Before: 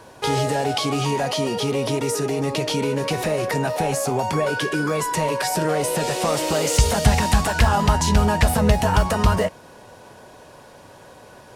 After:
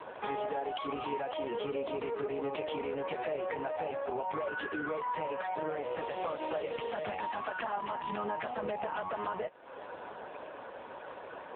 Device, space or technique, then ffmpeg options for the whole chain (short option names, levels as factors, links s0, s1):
voicemail: -af "highpass=350,lowpass=3000,acompressor=threshold=0.0141:ratio=6,volume=1.78" -ar 8000 -c:a libopencore_amrnb -b:a 5150